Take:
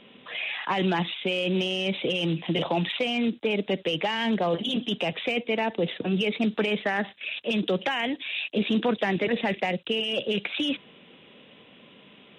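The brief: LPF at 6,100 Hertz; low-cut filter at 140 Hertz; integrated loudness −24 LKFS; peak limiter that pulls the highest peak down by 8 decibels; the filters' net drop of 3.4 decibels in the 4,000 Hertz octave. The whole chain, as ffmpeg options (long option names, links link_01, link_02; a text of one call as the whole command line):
ffmpeg -i in.wav -af "highpass=140,lowpass=6100,equalizer=frequency=4000:width_type=o:gain=-5,volume=7dB,alimiter=limit=-15dB:level=0:latency=1" out.wav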